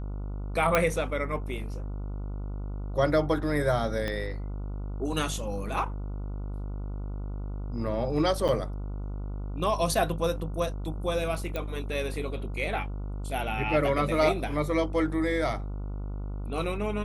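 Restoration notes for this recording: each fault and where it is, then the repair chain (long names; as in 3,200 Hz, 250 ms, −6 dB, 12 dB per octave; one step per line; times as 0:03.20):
mains buzz 50 Hz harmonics 29 −34 dBFS
0:00.75: click −8 dBFS
0:04.08: click −18 dBFS
0:08.48–0:08.49: drop-out 7.6 ms
0:11.56: click −18 dBFS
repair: click removal
hum removal 50 Hz, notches 29
repair the gap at 0:08.48, 7.6 ms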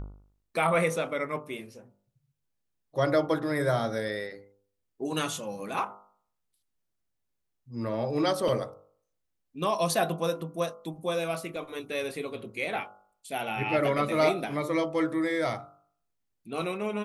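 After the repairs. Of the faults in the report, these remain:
0:04.08: click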